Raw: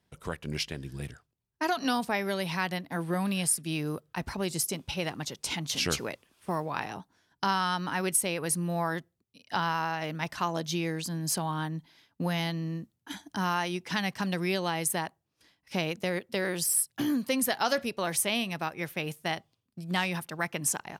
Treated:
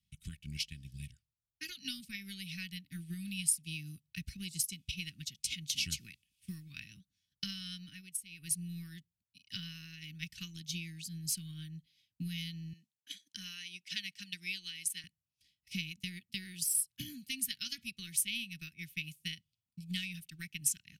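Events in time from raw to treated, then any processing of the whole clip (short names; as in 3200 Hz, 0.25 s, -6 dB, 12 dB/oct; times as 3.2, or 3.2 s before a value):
7.78–8.57 dip -10.5 dB, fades 0.28 s
12.73–15.04 weighting filter A
whole clip: comb 2.7 ms, depth 35%; transient shaper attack +6 dB, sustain -4 dB; elliptic band-stop 190–2500 Hz, stop band 80 dB; gain -6.5 dB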